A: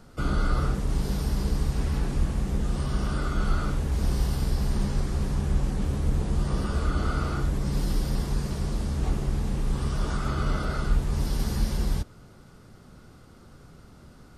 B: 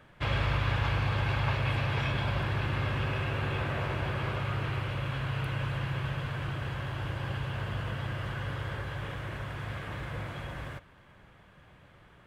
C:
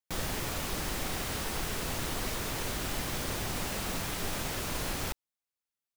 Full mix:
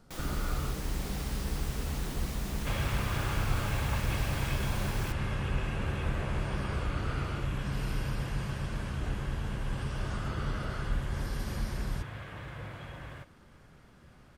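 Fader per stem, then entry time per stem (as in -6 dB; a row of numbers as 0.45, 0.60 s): -8.5, -5.0, -7.5 dB; 0.00, 2.45, 0.00 s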